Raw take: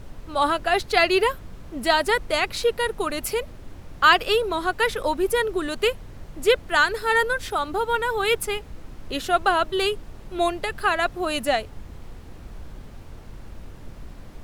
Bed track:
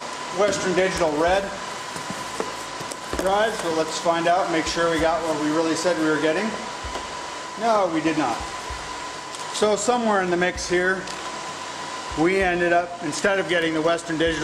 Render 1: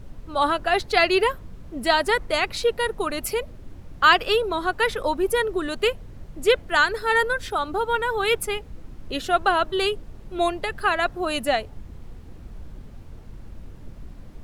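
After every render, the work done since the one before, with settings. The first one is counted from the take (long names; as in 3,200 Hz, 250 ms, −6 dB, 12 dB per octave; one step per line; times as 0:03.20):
broadband denoise 6 dB, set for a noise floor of −42 dBFS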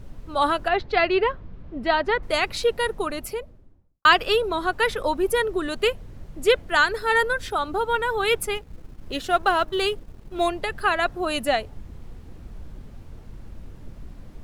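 0:00.68–0:02.23: high-frequency loss of the air 250 metres
0:02.84–0:04.05: fade out and dull
0:08.55–0:10.48: mu-law and A-law mismatch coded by A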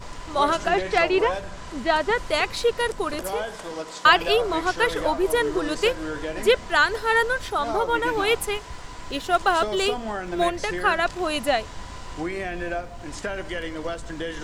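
mix in bed track −10 dB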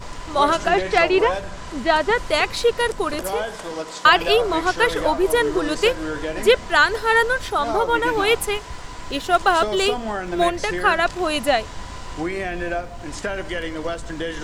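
level +3.5 dB
brickwall limiter −3 dBFS, peak gain reduction 3 dB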